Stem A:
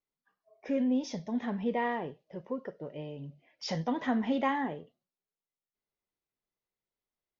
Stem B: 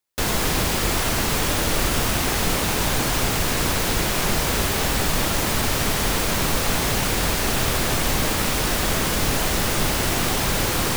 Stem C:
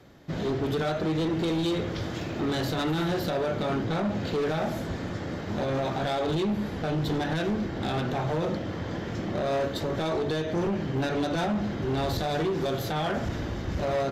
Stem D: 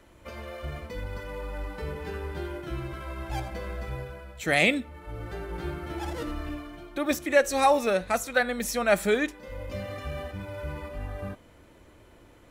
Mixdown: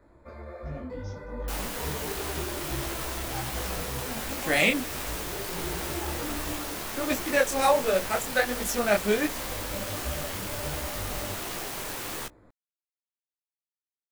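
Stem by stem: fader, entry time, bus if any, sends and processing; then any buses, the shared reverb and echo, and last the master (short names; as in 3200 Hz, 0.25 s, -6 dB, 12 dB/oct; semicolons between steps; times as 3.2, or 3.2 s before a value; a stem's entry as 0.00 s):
-10.5 dB, 0.00 s, no send, dry
-7.5 dB, 1.30 s, no send, self-modulated delay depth 0.44 ms; tone controls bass -8 dB, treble -5 dB
off
+2.5 dB, 0.00 s, no send, Wiener smoothing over 15 samples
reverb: off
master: high shelf 4900 Hz +7.5 dB; detuned doubles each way 48 cents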